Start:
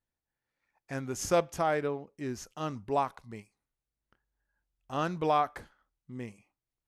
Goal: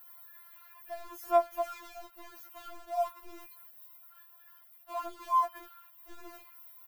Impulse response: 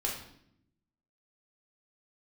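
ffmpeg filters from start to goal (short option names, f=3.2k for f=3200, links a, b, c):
-filter_complex "[0:a]aeval=exprs='val(0)+0.5*0.01*sgn(val(0))':c=same,firequalizer=gain_entry='entry(110,0);entry(200,6);entry(290,-22);entry(450,-6);entry(860,3);entry(1700,-10);entry(7000,-24);entry(13000,6)':delay=0.05:min_phase=1,acrossover=split=930[a][b];[a]aeval=exprs='val(0)*gte(abs(val(0)),0.00944)':c=same[c];[c][b]amix=inputs=2:normalize=0,afftfilt=real='re*4*eq(mod(b,16),0)':imag='im*4*eq(mod(b,16),0)':win_size=2048:overlap=0.75"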